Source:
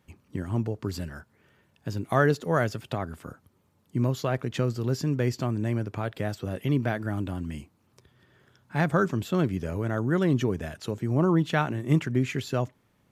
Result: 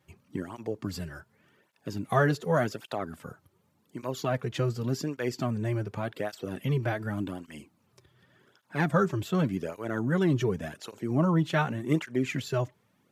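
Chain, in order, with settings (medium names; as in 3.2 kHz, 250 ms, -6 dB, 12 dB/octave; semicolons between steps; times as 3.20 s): bass shelf 94 Hz -8.5 dB; cancelling through-zero flanger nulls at 0.87 Hz, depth 4.6 ms; trim +2 dB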